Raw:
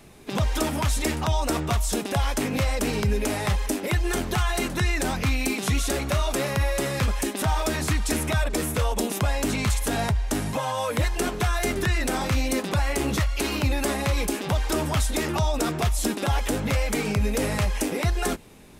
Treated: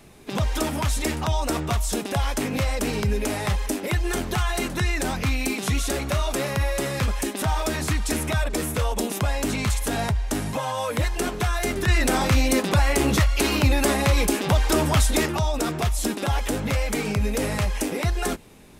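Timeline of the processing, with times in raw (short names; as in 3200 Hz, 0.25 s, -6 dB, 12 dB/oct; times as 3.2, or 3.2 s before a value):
11.88–15.26 gain +4.5 dB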